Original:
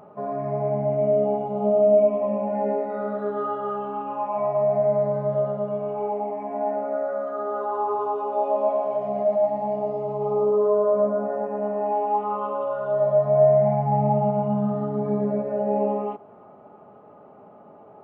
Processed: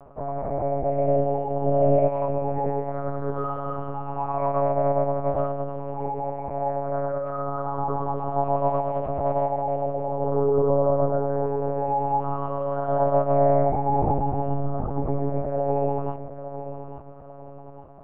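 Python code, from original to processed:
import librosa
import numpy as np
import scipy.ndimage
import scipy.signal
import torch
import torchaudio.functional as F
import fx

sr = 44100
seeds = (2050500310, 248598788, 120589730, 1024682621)

y = scipy.signal.sosfilt(scipy.signal.butter(2, 110.0, 'highpass', fs=sr, output='sos'), x)
y = fx.high_shelf(y, sr, hz=2200.0, db=-5.0)
y = fx.echo_feedback(y, sr, ms=852, feedback_pct=41, wet_db=-11)
y = fx.lpc_monotone(y, sr, seeds[0], pitch_hz=140.0, order=8)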